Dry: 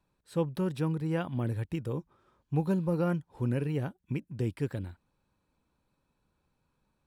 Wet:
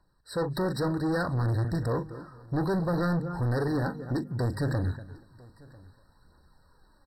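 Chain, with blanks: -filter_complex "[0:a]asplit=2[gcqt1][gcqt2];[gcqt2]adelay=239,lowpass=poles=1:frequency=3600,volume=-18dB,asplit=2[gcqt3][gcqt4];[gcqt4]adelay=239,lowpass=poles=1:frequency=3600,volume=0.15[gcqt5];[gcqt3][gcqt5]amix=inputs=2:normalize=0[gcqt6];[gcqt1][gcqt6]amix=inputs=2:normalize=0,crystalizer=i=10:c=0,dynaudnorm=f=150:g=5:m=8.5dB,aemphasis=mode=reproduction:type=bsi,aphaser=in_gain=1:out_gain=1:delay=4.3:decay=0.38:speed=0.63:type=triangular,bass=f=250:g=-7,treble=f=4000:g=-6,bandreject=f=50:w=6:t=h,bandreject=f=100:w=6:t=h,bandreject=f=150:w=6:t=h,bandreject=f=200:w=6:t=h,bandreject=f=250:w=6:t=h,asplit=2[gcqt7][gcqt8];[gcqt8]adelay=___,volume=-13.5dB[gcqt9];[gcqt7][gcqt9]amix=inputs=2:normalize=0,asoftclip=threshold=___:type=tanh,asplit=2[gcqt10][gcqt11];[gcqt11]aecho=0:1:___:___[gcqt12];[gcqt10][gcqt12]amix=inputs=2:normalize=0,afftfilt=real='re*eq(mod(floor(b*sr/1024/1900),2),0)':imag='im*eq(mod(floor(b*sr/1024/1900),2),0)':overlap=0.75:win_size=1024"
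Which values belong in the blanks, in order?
41, -24.5dB, 995, 0.0668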